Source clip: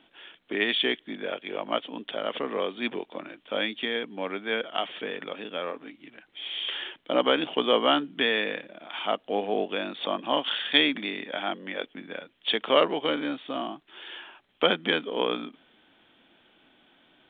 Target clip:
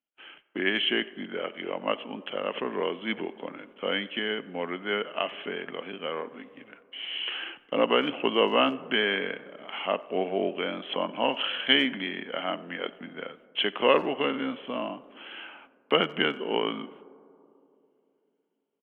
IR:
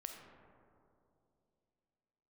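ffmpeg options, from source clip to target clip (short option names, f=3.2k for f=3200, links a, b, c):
-filter_complex "[0:a]agate=range=-34dB:threshold=-52dB:ratio=16:detection=peak,asplit=2[a][b];[1:a]atrim=start_sample=2205,lowshelf=f=220:g=-9.5,highshelf=f=3.8k:g=-9[c];[b][c]afir=irnorm=-1:irlink=0,volume=-7dB[d];[a][d]amix=inputs=2:normalize=0,asetrate=40517,aresample=44100,asplit=2[e][f];[f]adelay=90,highpass=300,lowpass=3.4k,asoftclip=type=hard:threshold=-13dB,volume=-23dB[g];[e][g]amix=inputs=2:normalize=0,volume=-2dB"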